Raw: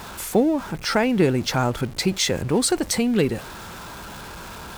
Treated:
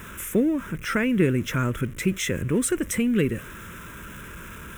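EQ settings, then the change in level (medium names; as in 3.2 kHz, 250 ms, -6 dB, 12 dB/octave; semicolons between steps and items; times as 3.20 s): static phaser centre 1.9 kHz, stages 4; 0.0 dB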